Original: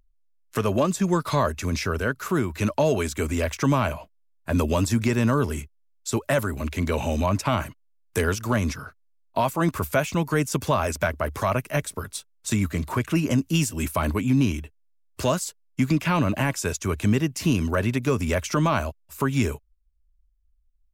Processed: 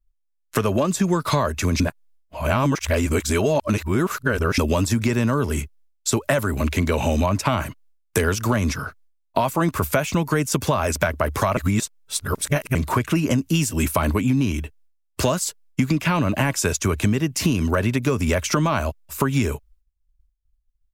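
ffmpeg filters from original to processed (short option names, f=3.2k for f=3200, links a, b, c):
-filter_complex "[0:a]asplit=5[a][b][c][d][e];[a]atrim=end=1.802[f];[b]atrim=start=1.798:end=4.582,asetpts=PTS-STARTPTS,areverse[g];[c]atrim=start=4.578:end=11.572[h];[d]atrim=start=11.568:end=12.752,asetpts=PTS-STARTPTS,areverse[i];[e]atrim=start=12.748[j];[f][g]acrossfade=d=0.004:c1=hsin:c2=hsin[k];[k][h]acrossfade=d=0.004:c1=hsin:c2=hsin[l];[l][i]acrossfade=d=0.004:c1=hsin:c2=hsin[m];[m][j]acrossfade=d=0.004:c1=hsin:c2=hsin,agate=range=-33dB:threshold=-55dB:ratio=3:detection=peak,acompressor=threshold=-25dB:ratio=6,volume=8.5dB"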